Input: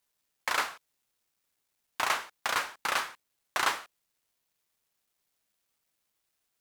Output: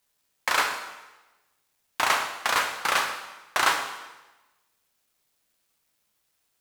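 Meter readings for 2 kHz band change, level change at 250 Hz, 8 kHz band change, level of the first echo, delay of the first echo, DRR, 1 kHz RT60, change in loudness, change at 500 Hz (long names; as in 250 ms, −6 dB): +6.0 dB, +6.0 dB, +6.0 dB, no echo audible, no echo audible, 5.0 dB, 1.1 s, +6.0 dB, +6.5 dB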